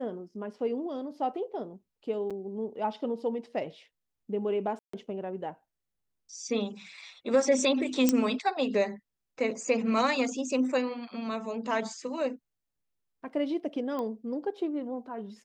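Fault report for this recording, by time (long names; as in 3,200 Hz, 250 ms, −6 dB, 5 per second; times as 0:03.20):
0:02.30–0:02.31: drop-out 6.2 ms
0:04.79–0:04.93: drop-out 144 ms
0:08.09: click −10 dBFS
0:13.99: click −23 dBFS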